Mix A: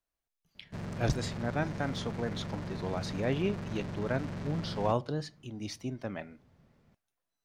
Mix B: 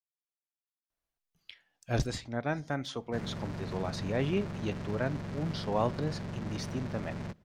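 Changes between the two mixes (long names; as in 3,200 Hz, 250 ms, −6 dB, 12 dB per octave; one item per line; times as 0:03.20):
speech: entry +0.90 s
background: entry +2.40 s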